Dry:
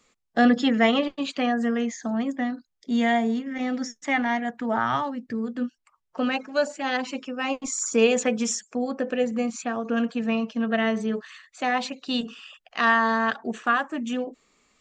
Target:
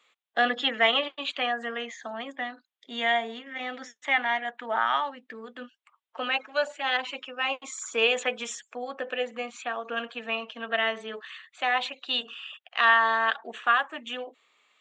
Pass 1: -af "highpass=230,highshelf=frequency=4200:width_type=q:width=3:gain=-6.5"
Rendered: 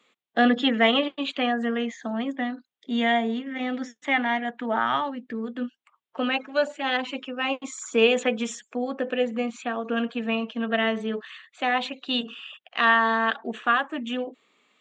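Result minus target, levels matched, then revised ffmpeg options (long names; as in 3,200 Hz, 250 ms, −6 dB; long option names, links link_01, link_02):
250 Hz band +13.0 dB
-af "highpass=660,highshelf=frequency=4200:width_type=q:width=3:gain=-6.5"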